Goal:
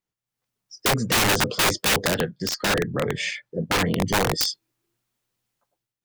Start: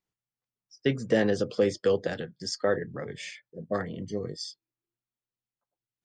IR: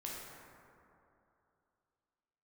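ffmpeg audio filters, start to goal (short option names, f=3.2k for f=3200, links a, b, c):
-filter_complex "[0:a]dynaudnorm=f=110:g=7:m=15.5dB,aeval=exprs='(mod(5.01*val(0)+1,2)-1)/5.01':c=same,asettb=1/sr,asplit=3[a][b][c];[a]atrim=end=2.284[d];[b]atrim=start=2.28:end=3.92,asetpts=PTS-STARTPTS,afade=t=in:d=0.004:c=qsin,afade=t=out:st=1.636:d=0.004:c=qsin,highshelf=f=5.3k:g=-8[e];[c]atrim=start=3.916[f];[d][e]acrossfade=d=0.004:c1=hsin:c2=qsin[g];[g][f]acrossfade=d=0.004:c1=qsin:c2=hsin"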